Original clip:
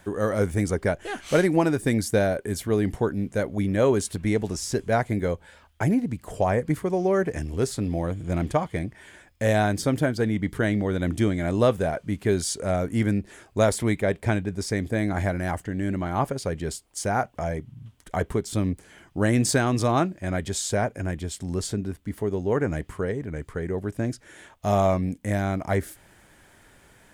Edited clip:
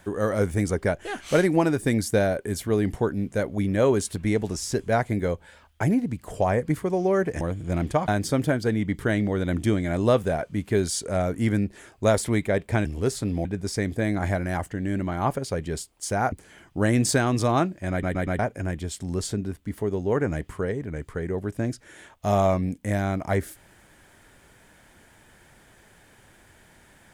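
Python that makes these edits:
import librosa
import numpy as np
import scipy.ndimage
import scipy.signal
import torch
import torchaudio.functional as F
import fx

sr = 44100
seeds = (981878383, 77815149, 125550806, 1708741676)

y = fx.edit(x, sr, fx.move(start_s=7.41, length_s=0.6, to_s=14.39),
    fx.cut(start_s=8.68, length_s=0.94),
    fx.cut(start_s=17.26, length_s=1.46),
    fx.stutter_over(start_s=20.31, slice_s=0.12, count=4), tone=tone)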